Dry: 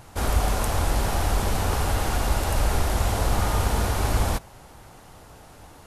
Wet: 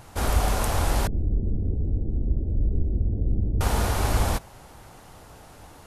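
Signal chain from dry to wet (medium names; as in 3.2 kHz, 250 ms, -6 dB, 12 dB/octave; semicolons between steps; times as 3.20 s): 1.07–3.61 s: inverse Chebyshev low-pass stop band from 1.2 kHz, stop band 60 dB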